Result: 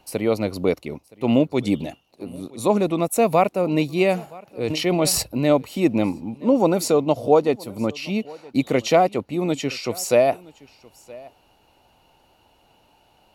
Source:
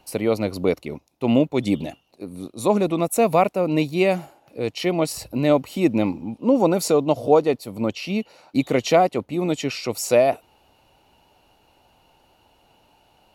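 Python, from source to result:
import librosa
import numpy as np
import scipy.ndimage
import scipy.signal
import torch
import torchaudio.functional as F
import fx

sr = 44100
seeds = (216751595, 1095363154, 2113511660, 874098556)

p1 = x + fx.echo_single(x, sr, ms=970, db=-23.0, dry=0)
y = fx.sustainer(p1, sr, db_per_s=31.0, at=(4.68, 5.21), fade=0.02)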